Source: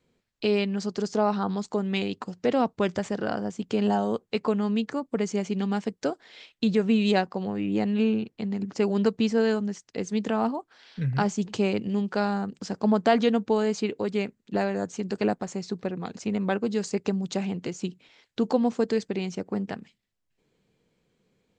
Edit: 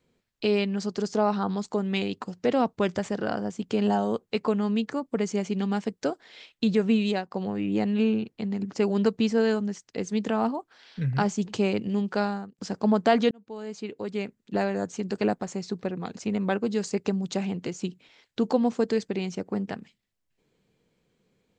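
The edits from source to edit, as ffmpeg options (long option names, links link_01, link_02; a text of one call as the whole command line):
ffmpeg -i in.wav -filter_complex "[0:a]asplit=4[link_01][link_02][link_03][link_04];[link_01]atrim=end=7.31,asetpts=PTS-STARTPTS,afade=type=out:start_time=6.93:duration=0.38:silence=0.223872[link_05];[link_02]atrim=start=7.31:end=12.58,asetpts=PTS-STARTPTS,afade=type=in:duration=0.004:curve=hsin:silence=0.223872,afade=type=out:start_time=4.9:duration=0.37[link_06];[link_03]atrim=start=12.58:end=13.31,asetpts=PTS-STARTPTS,afade=type=in:duration=0.004:curve=hsin,afade=type=out:start_time=0.726:duration=0.004:curve=hsin[link_07];[link_04]atrim=start=13.31,asetpts=PTS-STARTPTS,afade=type=in:duration=1.3[link_08];[link_05][link_06][link_07][link_08]concat=n=4:v=0:a=1" out.wav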